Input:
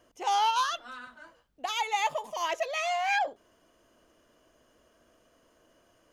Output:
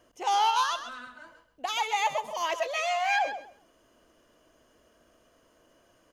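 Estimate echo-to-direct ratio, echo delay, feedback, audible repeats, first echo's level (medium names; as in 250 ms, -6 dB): -10.5 dB, 131 ms, 19%, 2, -10.5 dB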